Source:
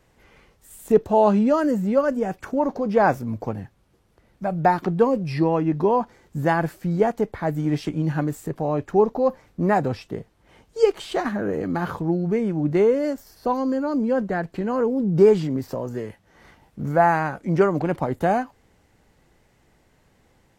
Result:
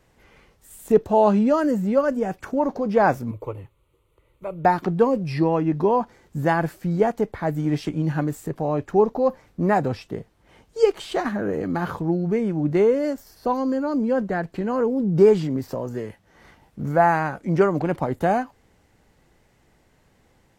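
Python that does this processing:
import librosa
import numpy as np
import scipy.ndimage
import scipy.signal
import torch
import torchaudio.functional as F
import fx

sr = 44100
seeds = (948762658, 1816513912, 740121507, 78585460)

y = fx.fixed_phaser(x, sr, hz=1100.0, stages=8, at=(3.31, 4.65))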